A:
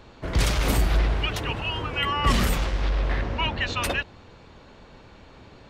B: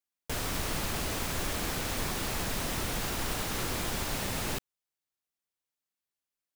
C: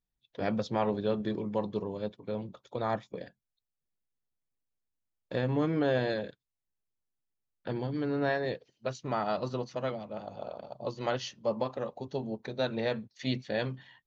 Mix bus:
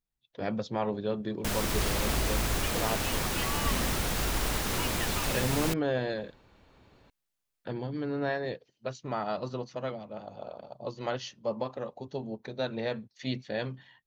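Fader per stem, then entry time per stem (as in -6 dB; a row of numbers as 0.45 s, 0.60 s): -11.5 dB, +2.0 dB, -1.5 dB; 1.40 s, 1.15 s, 0.00 s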